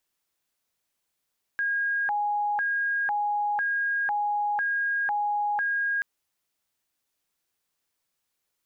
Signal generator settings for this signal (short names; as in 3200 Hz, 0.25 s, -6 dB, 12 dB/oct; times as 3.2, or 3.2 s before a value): siren hi-lo 828–1630 Hz 1/s sine -23.5 dBFS 4.43 s